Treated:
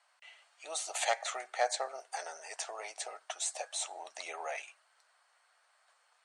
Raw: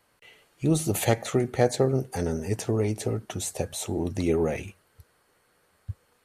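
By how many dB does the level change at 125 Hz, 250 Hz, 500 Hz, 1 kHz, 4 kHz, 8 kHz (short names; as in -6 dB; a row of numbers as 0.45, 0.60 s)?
under -40 dB, -39.0 dB, -14.0 dB, -2.0 dB, -2.0 dB, -3.5 dB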